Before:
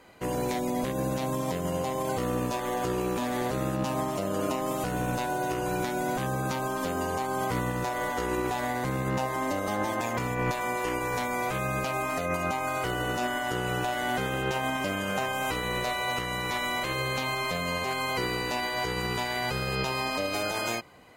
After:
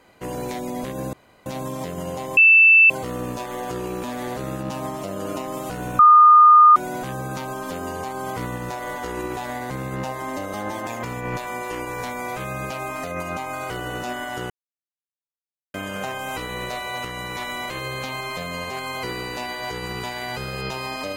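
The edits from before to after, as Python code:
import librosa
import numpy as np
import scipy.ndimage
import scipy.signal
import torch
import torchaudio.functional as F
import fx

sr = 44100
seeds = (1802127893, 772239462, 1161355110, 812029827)

y = fx.edit(x, sr, fx.insert_room_tone(at_s=1.13, length_s=0.33),
    fx.insert_tone(at_s=2.04, length_s=0.53, hz=2650.0, db=-8.5),
    fx.bleep(start_s=5.13, length_s=0.77, hz=1220.0, db=-7.0),
    fx.silence(start_s=13.64, length_s=1.24), tone=tone)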